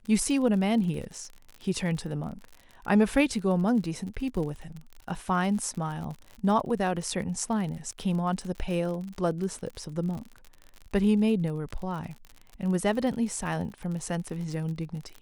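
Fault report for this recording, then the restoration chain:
crackle 50 per s -35 dBFS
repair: de-click

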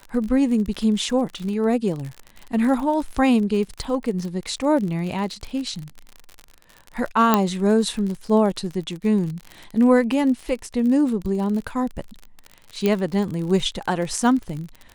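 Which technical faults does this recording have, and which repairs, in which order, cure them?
crackle 48 per s -28 dBFS
7.34 s: pop -2 dBFS
12.86 s: pop -8 dBFS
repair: de-click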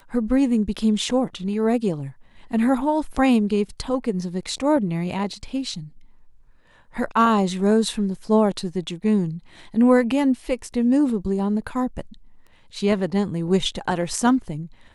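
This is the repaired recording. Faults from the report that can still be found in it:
nothing left

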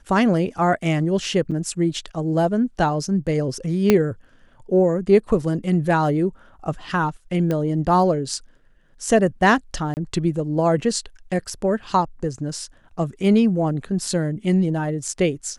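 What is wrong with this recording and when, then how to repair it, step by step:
1.51–1.52 s: dropout 6.3 ms
3.90 s: pop -2 dBFS
7.51 s: pop -12 dBFS
9.94–9.97 s: dropout 29 ms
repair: de-click; interpolate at 1.51 s, 6.3 ms; interpolate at 9.94 s, 29 ms

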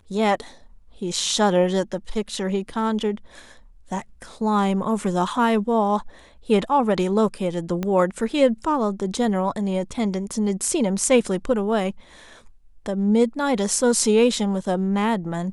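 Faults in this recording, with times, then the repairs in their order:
7.83 s: pop -13 dBFS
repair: de-click

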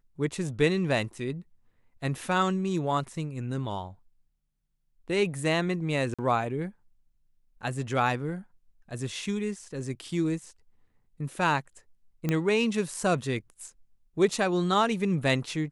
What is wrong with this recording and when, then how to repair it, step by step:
6.14–6.19 s: dropout 46 ms
12.29 s: pop -14 dBFS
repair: de-click; interpolate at 6.14 s, 46 ms

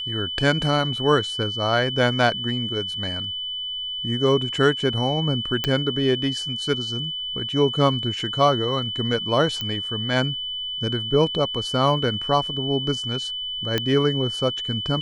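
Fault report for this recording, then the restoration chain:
whine 3 kHz -27 dBFS
5.64 s: pop -8 dBFS
9.61 s: pop -13 dBFS
13.78 s: pop -8 dBFS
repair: de-click; band-stop 3 kHz, Q 30

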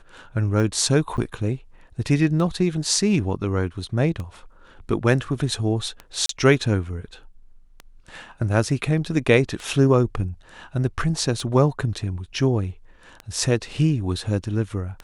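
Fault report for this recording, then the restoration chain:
tick 33 1/3 rpm
1.17–1.18 s: dropout 8.3 ms
6.26–6.29 s: dropout 33 ms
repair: de-click; interpolate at 1.17 s, 8.3 ms; interpolate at 6.26 s, 33 ms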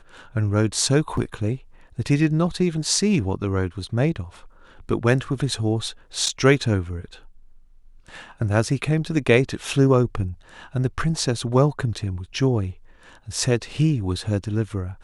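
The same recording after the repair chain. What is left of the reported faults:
nothing left

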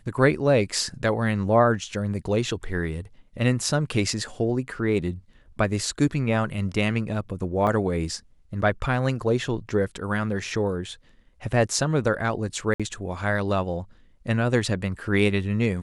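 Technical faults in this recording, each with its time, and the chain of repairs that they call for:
7.67 s: dropout 3.3 ms
12.74–12.80 s: dropout 56 ms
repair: interpolate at 7.67 s, 3.3 ms; interpolate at 12.74 s, 56 ms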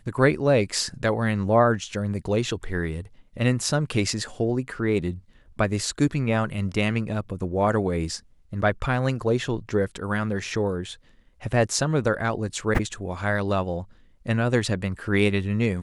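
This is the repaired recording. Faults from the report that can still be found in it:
nothing left

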